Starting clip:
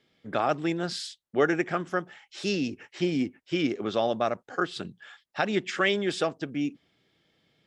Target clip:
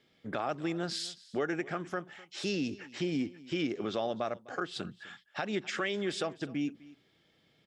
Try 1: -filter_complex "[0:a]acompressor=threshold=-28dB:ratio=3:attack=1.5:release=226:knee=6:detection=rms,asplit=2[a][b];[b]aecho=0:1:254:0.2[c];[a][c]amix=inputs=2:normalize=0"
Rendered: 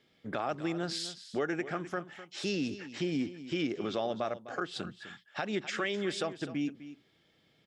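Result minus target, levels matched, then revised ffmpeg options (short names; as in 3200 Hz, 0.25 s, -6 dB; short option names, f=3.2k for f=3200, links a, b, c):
echo-to-direct +6.5 dB
-filter_complex "[0:a]acompressor=threshold=-28dB:ratio=3:attack=1.5:release=226:knee=6:detection=rms,asplit=2[a][b];[b]aecho=0:1:254:0.0944[c];[a][c]amix=inputs=2:normalize=0"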